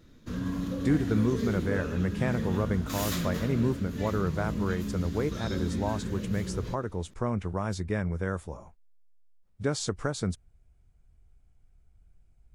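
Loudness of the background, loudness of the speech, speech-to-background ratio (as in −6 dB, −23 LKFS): −34.0 LKFS, −31.5 LKFS, 2.5 dB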